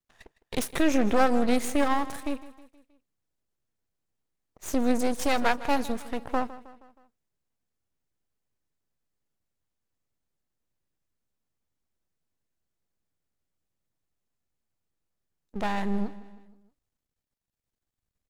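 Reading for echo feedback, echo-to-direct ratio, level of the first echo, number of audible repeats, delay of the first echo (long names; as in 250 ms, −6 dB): 51%, −15.5 dB, −17.0 dB, 4, 158 ms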